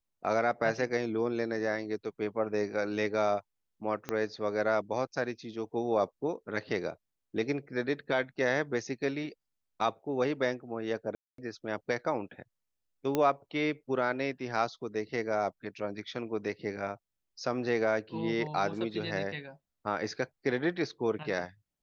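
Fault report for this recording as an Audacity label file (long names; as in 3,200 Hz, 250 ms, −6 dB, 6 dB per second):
4.090000	4.090000	click −18 dBFS
11.150000	11.380000	drop-out 233 ms
13.150000	13.150000	click −15 dBFS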